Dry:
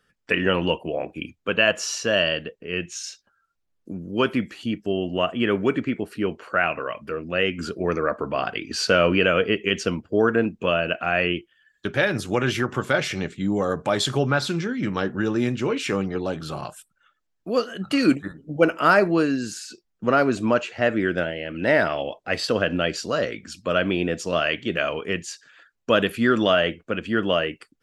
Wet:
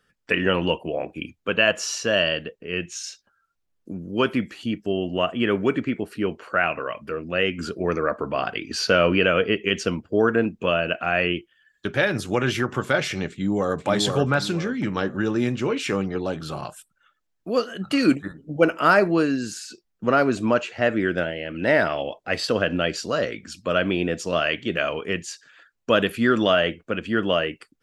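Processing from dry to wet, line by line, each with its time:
8.79–9.67 bell 7900 Hz -12.5 dB 0.2 oct
13.3–13.87 echo throw 0.48 s, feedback 35%, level -4.5 dB

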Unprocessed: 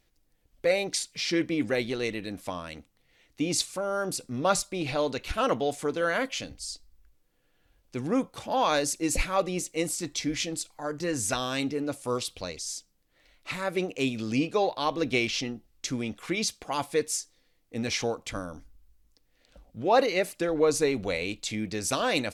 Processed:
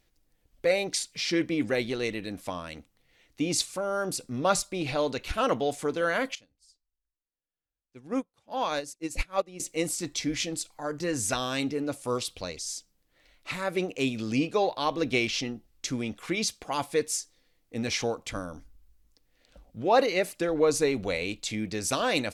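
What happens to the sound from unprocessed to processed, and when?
6.35–9.6 upward expander 2.5:1, over -40 dBFS

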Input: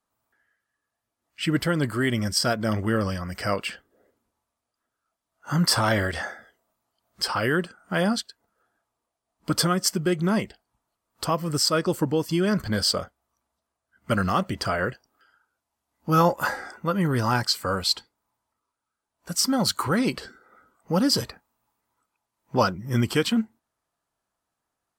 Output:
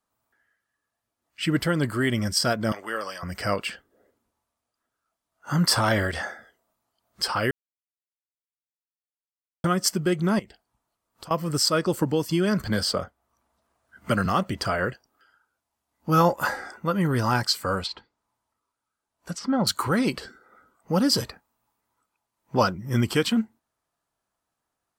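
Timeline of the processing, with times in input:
2.72–3.23 HPF 650 Hz
7.51–9.64 mute
10.39–11.31 compressor 4:1, threshold -42 dBFS
11.97–14.26 three-band squash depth 40%
17.79–19.67 treble ducked by the level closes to 2000 Hz, closed at -23 dBFS

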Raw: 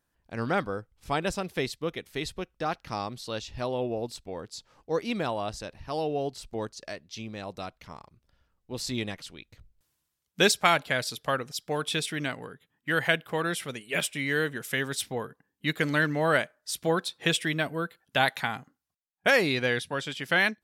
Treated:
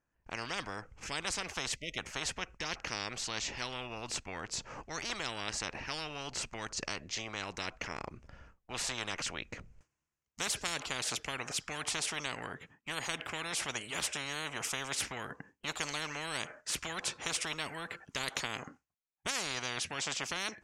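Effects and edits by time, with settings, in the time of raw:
1.76–1.98 spectral delete 640–1900 Hz
whole clip: gate with hold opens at -58 dBFS; EQ curve 2600 Hz 0 dB, 3700 Hz -15 dB, 6600 Hz -2 dB, 13000 Hz -28 dB; spectral compressor 10:1; gain -9 dB

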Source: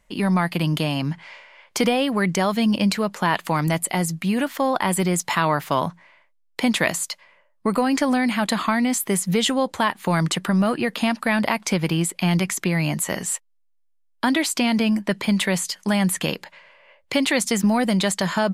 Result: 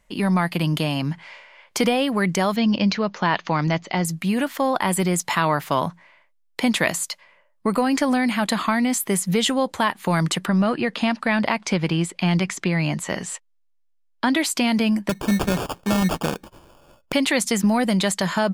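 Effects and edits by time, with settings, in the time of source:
2.56–4.05 steep low-pass 6500 Hz 96 dB/oct
10.46–14.35 LPF 6200 Hz
15.09–17.13 sample-rate reducer 2000 Hz

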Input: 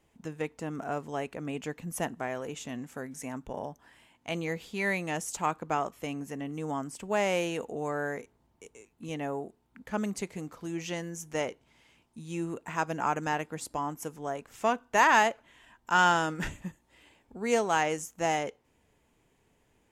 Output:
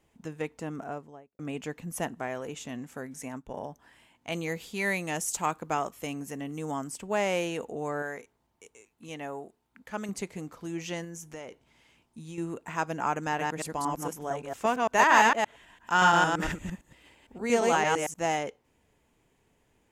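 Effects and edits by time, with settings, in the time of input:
0.64–1.39 studio fade out
3.28–3.69 upward expander, over -55 dBFS
4.32–6.96 high shelf 5400 Hz +8 dB
8.02–10.09 low shelf 490 Hz -7.5 dB
11.04–12.38 compressor 10:1, threshold -37 dBFS
13.28–18.14 reverse delay 0.114 s, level -1 dB

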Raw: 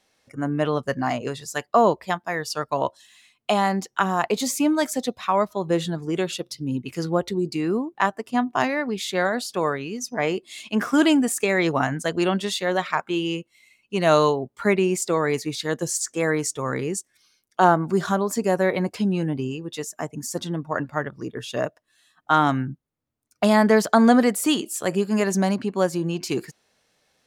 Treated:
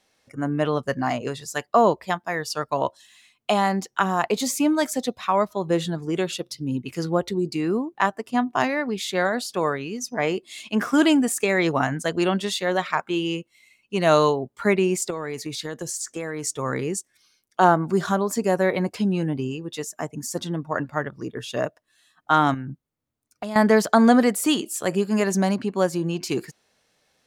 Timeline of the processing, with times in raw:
15.1–16.47 compressor, threshold -26 dBFS
22.54–23.56 compressor, threshold -28 dBFS

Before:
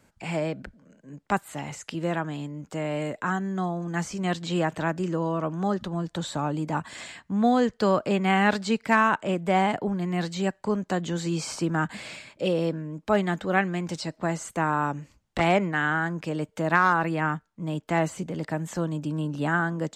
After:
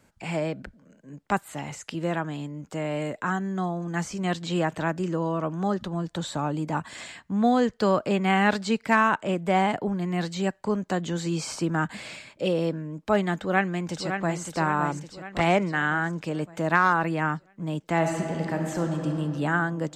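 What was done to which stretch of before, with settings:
13.37–14.43 echo throw 0.56 s, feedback 55%, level -7 dB
17.95–19.11 reverb throw, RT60 2.8 s, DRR 2.5 dB

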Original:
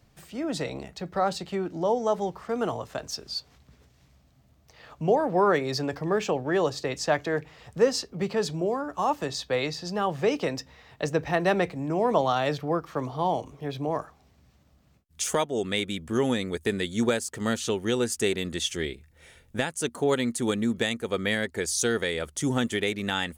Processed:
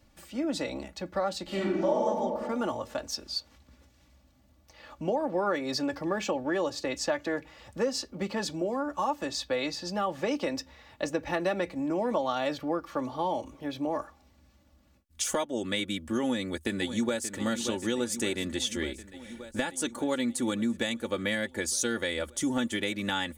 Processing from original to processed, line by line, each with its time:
1.43–2.06 reverb throw, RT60 1.4 s, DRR -7.5 dB
16.23–17.36 echo throw 0.58 s, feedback 75%, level -12.5 dB
whole clip: comb 3.5 ms, depth 70%; compressor 3:1, threshold -24 dBFS; gain -2 dB

